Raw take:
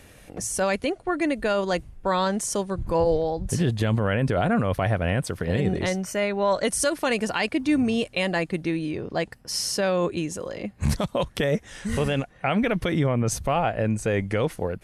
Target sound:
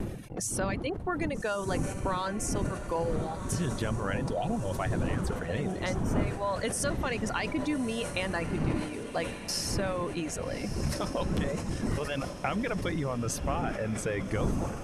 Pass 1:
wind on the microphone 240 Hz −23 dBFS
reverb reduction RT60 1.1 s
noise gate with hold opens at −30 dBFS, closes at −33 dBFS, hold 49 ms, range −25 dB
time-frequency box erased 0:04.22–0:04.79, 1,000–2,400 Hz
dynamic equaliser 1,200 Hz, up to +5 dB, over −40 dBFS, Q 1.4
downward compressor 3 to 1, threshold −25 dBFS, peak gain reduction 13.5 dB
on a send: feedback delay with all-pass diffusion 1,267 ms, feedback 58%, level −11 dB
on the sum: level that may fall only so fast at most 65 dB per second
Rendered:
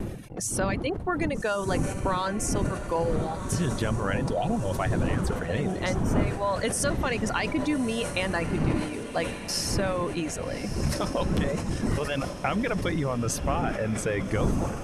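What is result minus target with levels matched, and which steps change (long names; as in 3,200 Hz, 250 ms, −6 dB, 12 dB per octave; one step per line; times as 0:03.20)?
downward compressor: peak gain reduction −4 dB
change: downward compressor 3 to 1, threshold −31 dBFS, peak gain reduction 17.5 dB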